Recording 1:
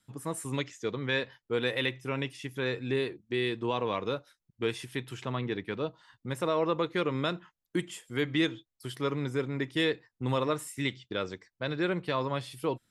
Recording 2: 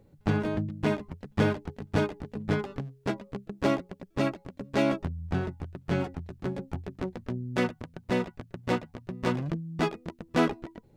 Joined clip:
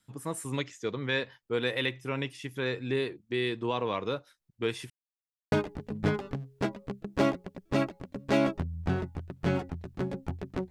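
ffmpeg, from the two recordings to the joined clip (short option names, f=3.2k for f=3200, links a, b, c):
-filter_complex "[0:a]apad=whole_dur=10.7,atrim=end=10.7,asplit=2[a][b];[a]atrim=end=4.9,asetpts=PTS-STARTPTS,afade=t=out:st=4.896:d=0.004:c=hsin[c];[b]atrim=start=4.9:end=5.52,asetpts=PTS-STARTPTS,volume=0[d];[1:a]atrim=start=1.97:end=7.15,asetpts=PTS-STARTPTS,afade=t=in:d=0.004:c=hsin[e];[c][d][e]concat=n=3:v=0:a=1"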